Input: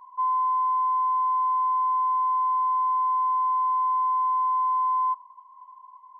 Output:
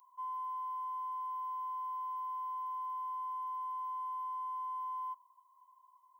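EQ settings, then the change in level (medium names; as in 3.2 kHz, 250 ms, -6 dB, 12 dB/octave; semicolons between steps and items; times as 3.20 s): differentiator; peaking EQ 1.7 kHz -10 dB 1.7 oct; +6.5 dB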